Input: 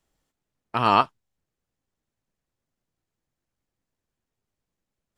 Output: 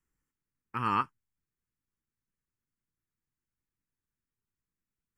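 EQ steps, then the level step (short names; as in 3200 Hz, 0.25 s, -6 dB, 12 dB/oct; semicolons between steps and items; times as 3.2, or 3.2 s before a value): fixed phaser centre 1600 Hz, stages 4; -6.5 dB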